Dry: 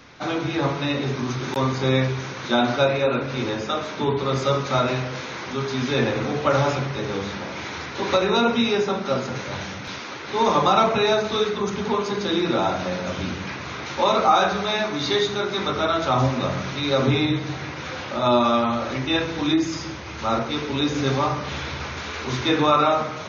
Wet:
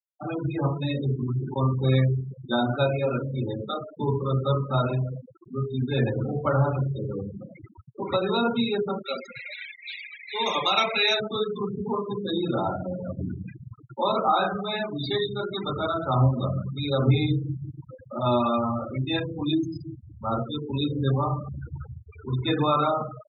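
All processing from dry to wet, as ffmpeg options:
-filter_complex "[0:a]asettb=1/sr,asplit=3[a][b][c];[a]atrim=end=9.004[d];[b]atrim=start=9:end=11.2,asetpts=PTS-STARTPTS,afade=t=in:d=0.004:c=qsin,afade=t=out:st=2.196:d=0.004:c=qsin,highpass=f=480:p=1,highshelf=f=1.6k:t=q:w=1.5:g=8[e];[c]atrim=start=11.196[f];[d][e]acrossfade=d=0.004:c1=hsin:c2=qsin[g];[g][f]acrossfade=d=0.004:c1=qsin:c2=hsin,afftfilt=real='re*gte(hypot(re,im),0.112)':imag='im*gte(hypot(re,im),0.112)':win_size=1024:overlap=0.75,equalizer=f=120:w=1.6:g=8.5,volume=-5dB"

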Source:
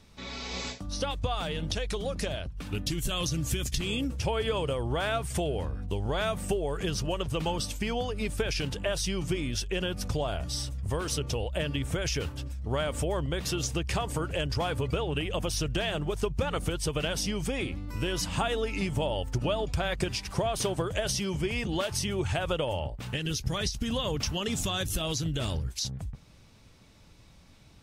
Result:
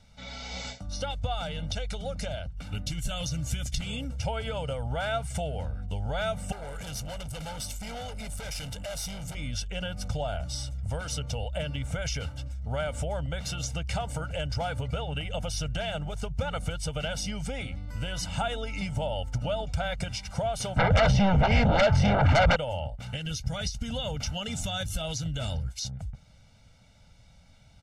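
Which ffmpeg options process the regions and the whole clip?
-filter_complex "[0:a]asettb=1/sr,asplit=3[a][b][c];[a]atrim=end=6.524[d];[b]atrim=start=6.52:end=9.35,asetpts=PTS-STARTPTS,afade=t=in:d=0.004:c=qsin,afade=t=out:st=2.826:d=0.004:c=qsin,asoftclip=type=hard:threshold=-33.5dB,equalizer=f=13k:t=o:w=1.2:g=12[e];[c]atrim=start=9.346[f];[d][e]acrossfade=d=0.004:c1=hsin:c2=qsin[g];[g][f]acrossfade=d=0.004:c1=qsin:c2=hsin,asettb=1/sr,asplit=3[h][i][j];[h]atrim=end=20.764[k];[i]atrim=start=20.76:end=22.56,asetpts=PTS-STARTPTS,afade=t=in:d=0.004:c=qsin,afade=t=out:st=1.796:d=0.004:c=qsin,lowpass=1.7k,aeval=exprs='0.158*sin(PI/2*5.01*val(0)/0.158)':c=same[l];[j]atrim=start=22.556[m];[k][l]acrossfade=d=0.004:c1=hsin:c2=qsin[n];[n][m]acrossfade=d=0.004:c1=qsin:c2=hsin,lowpass=10k,aecho=1:1:1.4:0.9,volume=-4.5dB"

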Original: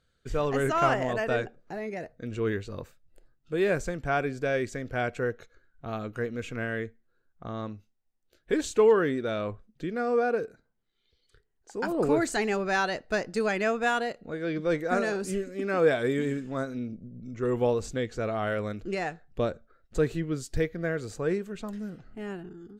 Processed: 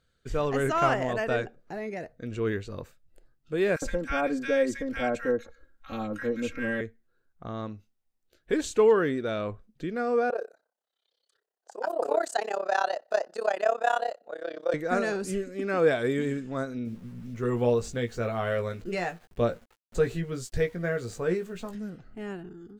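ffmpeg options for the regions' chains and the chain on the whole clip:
-filter_complex "[0:a]asettb=1/sr,asplit=3[a][b][c];[a]atrim=end=3.764[d];[b]atrim=start=3.76:end=6.81,asetpts=PTS-STARTPTS,afade=t=in:d=0.004:c=qsin,afade=t=out:st=3.046:d=0.004:c=qsin,aecho=1:1:3.7:0.97,atrim=end_sample=134505,acrossover=split=1300[e][f];[e]adelay=60[g];[g][f]amix=inputs=2:normalize=0,atrim=end_sample=134505[h];[c]atrim=start=6.806[i];[d][h]acrossfade=d=0.004:c1=hsin:c2=qsin[j];[j][i]acrossfade=d=0.004:c1=qsin:c2=hsin,asettb=1/sr,asplit=3[k][l][m];[k]atrim=end=10.304[n];[l]atrim=start=10.3:end=14.74,asetpts=PTS-STARTPTS,afade=t=in:d=0.004:c=qsin,afade=t=out:st=4.436:d=0.004:c=qsin,equalizer=f=2.2k:t=o:w=0.26:g=-11,tremolo=f=33:d=0.947,highpass=f=630:t=q:w=3[o];[m]atrim=start=14.736[p];[n][o]acrossfade=d=0.004:c1=hsin:c2=qsin[q];[q][p]acrossfade=d=0.004:c1=qsin:c2=hsin,asettb=1/sr,asplit=3[r][s][t];[r]atrim=end=16.854[u];[s]atrim=start=16.85:end=21.75,asetpts=PTS-STARTPTS,afade=t=in:d=0.004:c=qsin,afade=t=out:st=4.896:d=0.004:c=qsin,aeval=exprs='val(0)*gte(abs(val(0)),0.00224)':c=same,bandreject=f=310:w=6.5,asplit=2[v][w];[w]adelay=17,volume=-6dB[x];[v][x]amix=inputs=2:normalize=0,atrim=end_sample=216090[y];[t]atrim=start=21.746[z];[u][y]acrossfade=d=0.004:c1=hsin:c2=qsin[aa];[aa][z]acrossfade=d=0.004:c1=qsin:c2=hsin"

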